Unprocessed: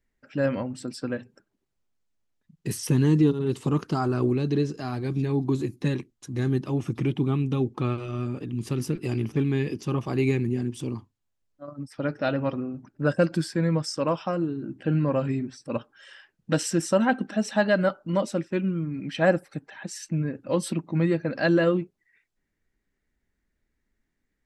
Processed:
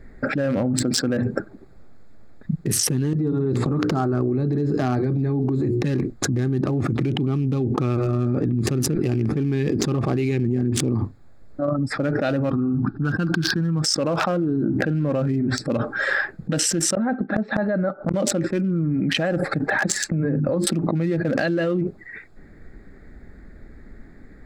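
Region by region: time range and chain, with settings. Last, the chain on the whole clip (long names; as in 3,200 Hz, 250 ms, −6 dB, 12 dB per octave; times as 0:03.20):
0:03.13–0:05.82: mains-hum notches 60/120/180/240/300/360/420/480/540 Hz + downward compressor 5 to 1, threshold −30 dBFS + one half of a high-frequency compander encoder only
0:12.50–0:13.82: high-shelf EQ 8,800 Hz −8.5 dB + phaser with its sweep stopped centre 2,100 Hz, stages 6
0:16.95–0:18.14: gate with flip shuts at −23 dBFS, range −28 dB + low-pass filter 3,900 Hz 24 dB per octave + saturating transformer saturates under 940 Hz
0:19.88–0:20.67: noise gate −47 dBFS, range −9 dB + mains-hum notches 50/100/150/200/250/300/350 Hz + downward compressor 5 to 1, threshold −40 dBFS
whole clip: adaptive Wiener filter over 15 samples; parametric band 980 Hz −11 dB 0.21 octaves; envelope flattener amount 100%; level −5.5 dB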